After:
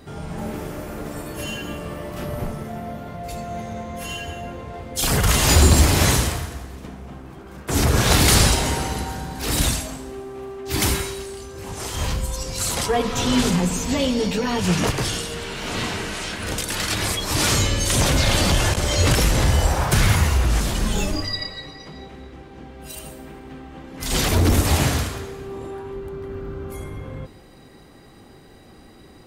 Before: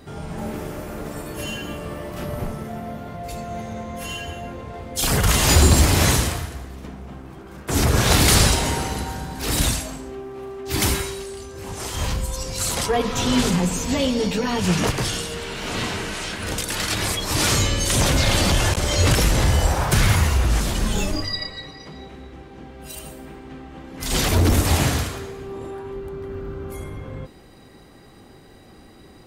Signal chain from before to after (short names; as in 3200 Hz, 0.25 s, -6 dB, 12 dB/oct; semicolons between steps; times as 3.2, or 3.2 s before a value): plate-style reverb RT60 2 s, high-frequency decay 0.85×, DRR 17 dB